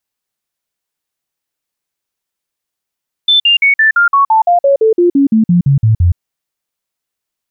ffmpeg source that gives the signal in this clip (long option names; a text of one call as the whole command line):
ffmpeg -f lavfi -i "aevalsrc='0.531*clip(min(mod(t,0.17),0.12-mod(t,0.17))/0.005,0,1)*sin(2*PI*3530*pow(2,-floor(t/0.17)/3)*mod(t,0.17))':duration=2.89:sample_rate=44100" out.wav